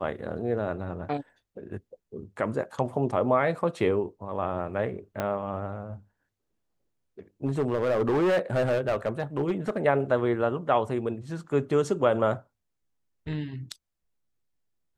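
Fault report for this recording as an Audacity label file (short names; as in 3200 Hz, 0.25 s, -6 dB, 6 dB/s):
5.200000	5.200000	pop -15 dBFS
7.450000	9.850000	clipped -20.5 dBFS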